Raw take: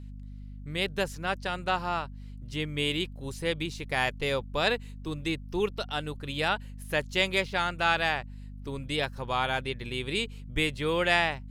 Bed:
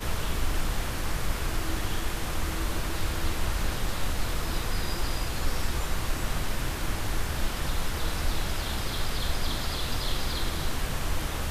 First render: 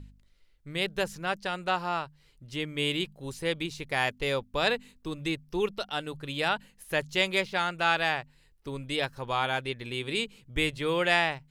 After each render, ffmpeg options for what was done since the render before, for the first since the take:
-af "bandreject=f=50:t=h:w=4,bandreject=f=100:t=h:w=4,bandreject=f=150:t=h:w=4,bandreject=f=200:t=h:w=4,bandreject=f=250:t=h:w=4"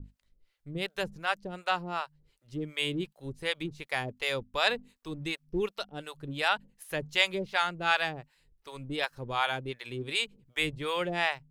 -filter_complex "[0:a]acrossover=split=530[s0][s1];[s0]aeval=exprs='val(0)*(1-1/2+1/2*cos(2*PI*2.7*n/s))':c=same[s2];[s1]aeval=exprs='val(0)*(1-1/2-1/2*cos(2*PI*2.7*n/s))':c=same[s3];[s2][s3]amix=inputs=2:normalize=0,asplit=2[s4][s5];[s5]aeval=exprs='sgn(val(0))*max(abs(val(0))-0.00282,0)':c=same,volume=0.299[s6];[s4][s6]amix=inputs=2:normalize=0"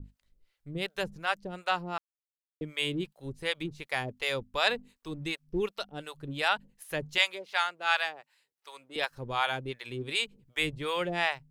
-filter_complex "[0:a]asettb=1/sr,asplit=3[s0][s1][s2];[s0]atrim=end=7.184[s3];[s1]atrim=start=7.18:end=8.96,asetpts=PTS-STARTPTS,afade=t=in:d=0.004:c=qsin,afade=t=out:st=1.776:d=0.004:c=qsin,highpass=680[s4];[s2]atrim=start=8.956[s5];[s3][s4]acrossfade=d=0.004:c1=hsin:c2=qsin[s6];[s6][s5]acrossfade=d=0.004:c1=qsin:c2=hsin,asplit=3[s7][s8][s9];[s7]atrim=end=1.98,asetpts=PTS-STARTPTS,afade=t=out:st=1.976:d=0.004:c=hsin[s10];[s8]atrim=start=1.98:end=2.61,asetpts=PTS-STARTPTS,volume=0[s11];[s9]atrim=start=2.61,asetpts=PTS-STARTPTS,afade=t=in:d=0.004:c=hsin[s12];[s10][s11][s12]concat=n=3:v=0:a=1"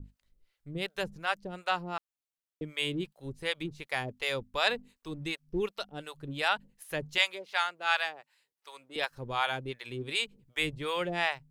-af "volume=0.891"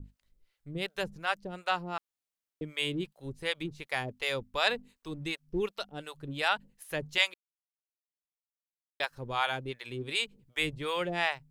-filter_complex "[0:a]asplit=3[s0][s1][s2];[s0]atrim=end=7.34,asetpts=PTS-STARTPTS,afade=t=out:st=7.336:d=0.004:c=hsin[s3];[s1]atrim=start=7.34:end=9,asetpts=PTS-STARTPTS,volume=0[s4];[s2]atrim=start=9,asetpts=PTS-STARTPTS,afade=t=in:d=0.004:c=hsin[s5];[s3][s4][s5]concat=n=3:v=0:a=1"

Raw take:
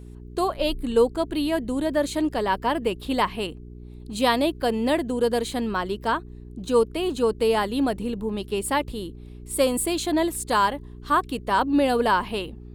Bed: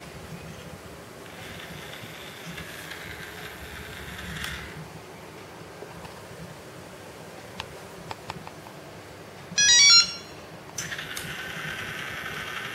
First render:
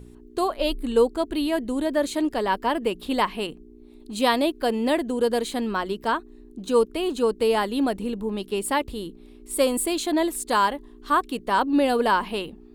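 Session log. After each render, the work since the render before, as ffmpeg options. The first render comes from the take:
-af "bandreject=f=60:t=h:w=4,bandreject=f=120:t=h:w=4,bandreject=f=180:t=h:w=4"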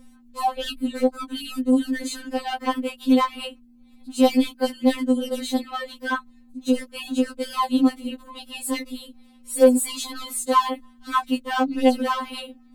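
-filter_complex "[0:a]asplit=2[s0][s1];[s1]aeval=exprs='0.119*(abs(mod(val(0)/0.119+3,4)-2)-1)':c=same,volume=0.501[s2];[s0][s2]amix=inputs=2:normalize=0,afftfilt=real='re*3.46*eq(mod(b,12),0)':imag='im*3.46*eq(mod(b,12),0)':win_size=2048:overlap=0.75"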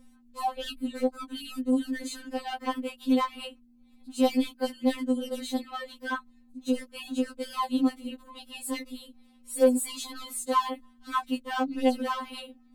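-af "volume=0.473"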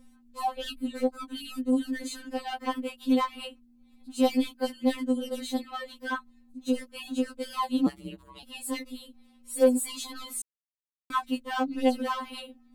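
-filter_complex "[0:a]asettb=1/sr,asplit=3[s0][s1][s2];[s0]atrim=end=7.864[s3];[s1]atrim=start=7.86:end=8.43,asetpts=PTS-STARTPTS,afade=t=in:d=0.004:c=qsin,afade=t=out:st=0.566:d=0.004:c=qsin,aeval=exprs='val(0)*sin(2*PI*67*n/s)':c=same[s4];[s2]atrim=start=8.426[s5];[s3][s4]acrossfade=d=0.004:c1=hsin:c2=qsin[s6];[s6][s5]acrossfade=d=0.004:c1=qsin:c2=hsin,asplit=3[s7][s8][s9];[s7]atrim=end=10.42,asetpts=PTS-STARTPTS,afade=t=out:st=10.416:d=0.004:c=hsin[s10];[s8]atrim=start=10.42:end=11.1,asetpts=PTS-STARTPTS,volume=0[s11];[s9]atrim=start=11.1,asetpts=PTS-STARTPTS,afade=t=in:d=0.004:c=hsin[s12];[s10][s11][s12]concat=n=3:v=0:a=1"

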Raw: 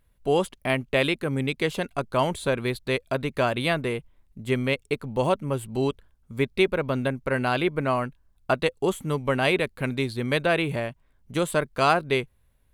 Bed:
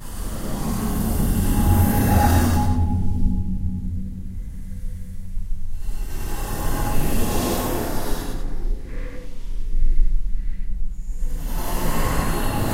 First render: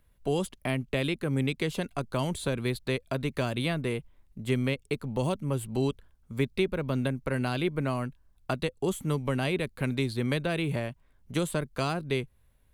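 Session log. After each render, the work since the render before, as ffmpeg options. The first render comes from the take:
-filter_complex "[0:a]acrossover=split=300|3600[s0][s1][s2];[s1]acompressor=threshold=0.0251:ratio=4[s3];[s2]alimiter=level_in=1.68:limit=0.0631:level=0:latency=1:release=279,volume=0.596[s4];[s0][s3][s4]amix=inputs=3:normalize=0"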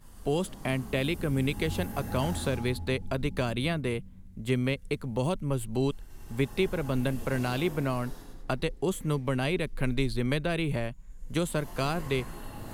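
-filter_complex "[1:a]volume=0.112[s0];[0:a][s0]amix=inputs=2:normalize=0"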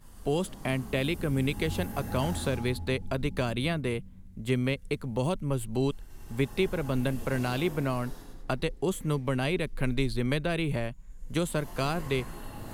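-af anull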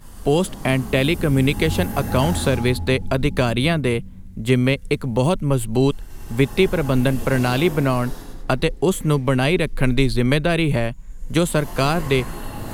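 -af "volume=3.35"

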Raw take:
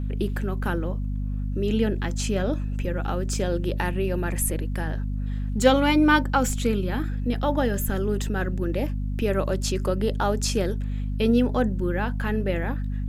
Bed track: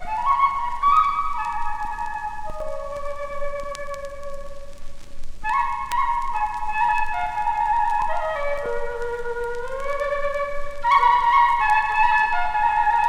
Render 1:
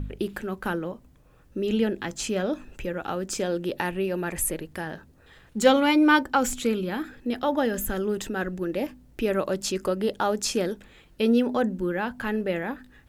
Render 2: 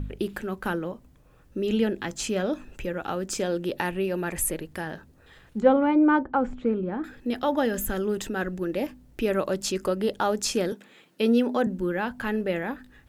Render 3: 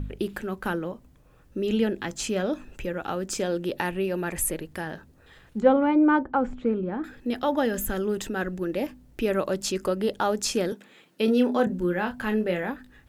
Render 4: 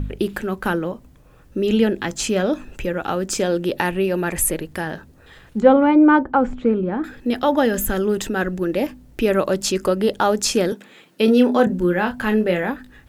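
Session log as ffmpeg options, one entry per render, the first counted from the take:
-af "bandreject=f=50:t=h:w=4,bandreject=f=100:t=h:w=4,bandreject=f=150:t=h:w=4,bandreject=f=200:t=h:w=4,bandreject=f=250:t=h:w=4"
-filter_complex "[0:a]asettb=1/sr,asplit=3[s0][s1][s2];[s0]atrim=end=5.604[s3];[s1]atrim=start=5.6:end=7.04,asetpts=PTS-STARTPTS,afade=t=in:d=0.004:c=qsin,afade=t=out:st=1.436:d=0.004:c=qsin,lowpass=1100[s4];[s2]atrim=start=7.036[s5];[s3][s4]acrossfade=d=0.004:c1=hsin:c2=qsin[s6];[s6][s5]acrossfade=d=0.004:c1=qsin:c2=hsin,asettb=1/sr,asplit=3[s7][s8][s9];[s7]atrim=end=10.724[s10];[s8]atrim=start=10.72:end=11.67,asetpts=PTS-STARTPTS,afade=t=in:d=0.004:c=qsin,afade=t=out:st=0.946:d=0.004:c=qsin,highpass=f=170:w=0.5412,highpass=f=170:w=1.3066[s11];[s9]atrim=start=11.666[s12];[s10][s11]acrossfade=d=0.004:c1=hsin:c2=qsin[s13];[s13][s12]acrossfade=d=0.004:c1=qsin:c2=hsin"
-filter_complex "[0:a]asettb=1/sr,asplit=3[s0][s1][s2];[s0]atrim=end=11.254[s3];[s1]atrim=start=11.25:end=12.7,asetpts=PTS-STARTPTS,afade=t=in:d=0.004:c=qsin,afade=t=out:st=1.446:d=0.004:c=qsin,asplit=2[s4][s5];[s5]adelay=28,volume=0.447[s6];[s4][s6]amix=inputs=2:normalize=0,atrim=end_sample=63945[s7];[s2]atrim=start=12.696[s8];[s3][s7]acrossfade=d=0.004:c1=hsin:c2=qsin[s9];[s9][s8]acrossfade=d=0.004:c1=qsin:c2=hsin"
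-af "volume=2.24,alimiter=limit=0.794:level=0:latency=1"

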